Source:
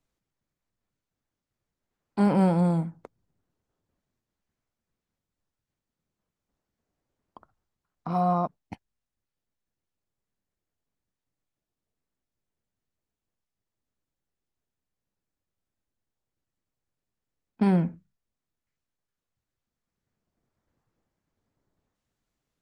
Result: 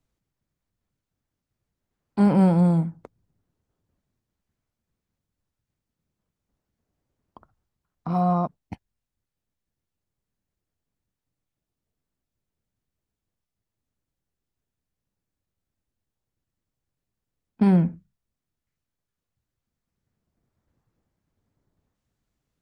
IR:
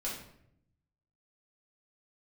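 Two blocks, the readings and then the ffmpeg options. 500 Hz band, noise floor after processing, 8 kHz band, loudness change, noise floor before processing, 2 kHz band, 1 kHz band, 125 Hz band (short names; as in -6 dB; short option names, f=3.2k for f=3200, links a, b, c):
+1.0 dB, under -85 dBFS, n/a, +4.0 dB, under -85 dBFS, 0.0 dB, +0.5 dB, +4.5 dB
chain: -af "equalizer=f=71:w=0.33:g=7"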